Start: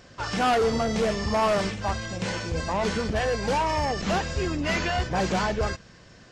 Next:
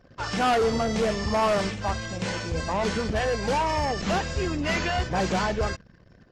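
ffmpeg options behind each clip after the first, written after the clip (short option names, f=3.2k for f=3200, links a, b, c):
-af "anlmdn=0.01"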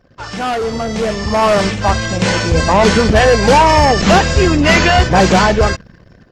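-af "dynaudnorm=f=630:g=5:m=13.5dB,volume=3dB"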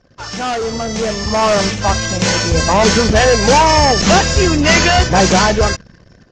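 -af "lowpass=f=6.4k:t=q:w=2.7,volume=-1.5dB"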